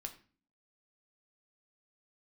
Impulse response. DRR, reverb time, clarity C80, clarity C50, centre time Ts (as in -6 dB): 4.0 dB, 0.40 s, 17.0 dB, 13.0 dB, 9 ms